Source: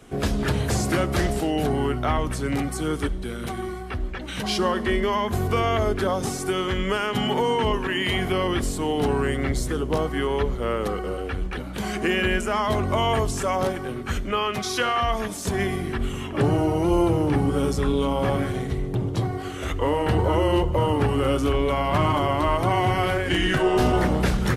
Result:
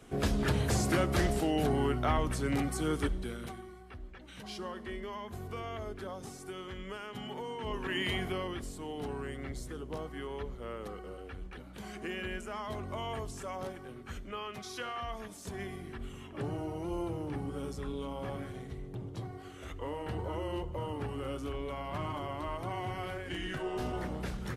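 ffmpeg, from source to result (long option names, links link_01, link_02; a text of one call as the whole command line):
ffmpeg -i in.wav -af "volume=4dB,afade=type=out:start_time=3.17:duration=0.47:silence=0.251189,afade=type=in:start_time=7.6:duration=0.38:silence=0.316228,afade=type=out:start_time=7.98:duration=0.61:silence=0.398107" out.wav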